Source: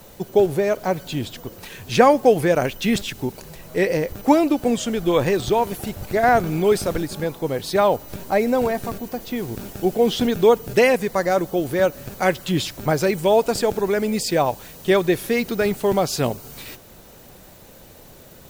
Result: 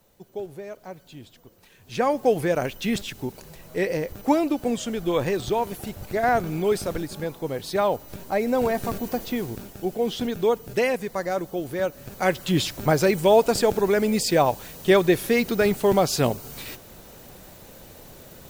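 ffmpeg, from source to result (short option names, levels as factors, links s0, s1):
-af "volume=2.82,afade=t=in:st=1.79:d=0.53:silence=0.251189,afade=t=in:st=8.4:d=0.73:silence=0.446684,afade=t=out:st=9.13:d=0.55:silence=0.354813,afade=t=in:st=11.96:d=0.64:silence=0.446684"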